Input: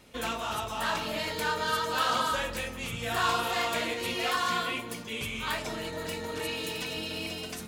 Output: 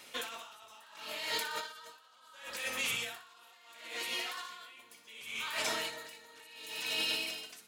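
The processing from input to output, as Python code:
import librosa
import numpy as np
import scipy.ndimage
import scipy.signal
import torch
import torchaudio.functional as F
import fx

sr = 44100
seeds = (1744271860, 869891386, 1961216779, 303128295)

y = fx.highpass(x, sr, hz=1500.0, slope=6)
y = fx.over_compress(y, sr, threshold_db=-40.0, ratio=-1.0)
y = fx.echo_feedback(y, sr, ms=61, feedback_pct=53, wet_db=-12)
y = y * 10.0 ** (-22 * (0.5 - 0.5 * np.cos(2.0 * np.pi * 0.71 * np.arange(len(y)) / sr)) / 20.0)
y = y * librosa.db_to_amplitude(4.0)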